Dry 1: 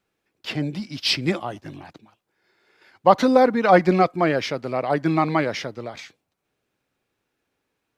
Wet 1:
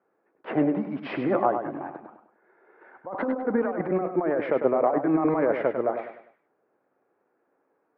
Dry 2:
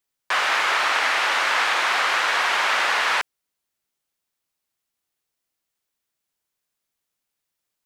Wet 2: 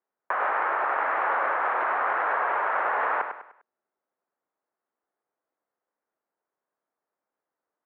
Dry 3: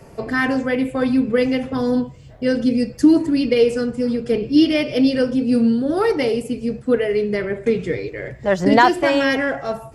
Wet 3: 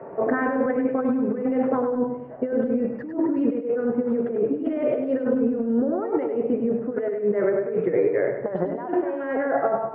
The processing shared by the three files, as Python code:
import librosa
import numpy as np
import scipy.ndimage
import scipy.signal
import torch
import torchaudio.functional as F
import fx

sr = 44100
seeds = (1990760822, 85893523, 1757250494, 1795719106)

p1 = scipy.signal.sosfilt(scipy.signal.butter(2, 440.0, 'highpass', fs=sr, output='sos'), x)
p2 = fx.tilt_shelf(p1, sr, db=7.0, hz=1200.0)
p3 = fx.over_compress(p2, sr, threshold_db=-25.0, ratio=-1.0)
p4 = scipy.signal.sosfilt(scipy.signal.butter(4, 1700.0, 'lowpass', fs=sr, output='sos'), p3)
y = p4 + fx.echo_feedback(p4, sr, ms=100, feedback_pct=37, wet_db=-7.5, dry=0)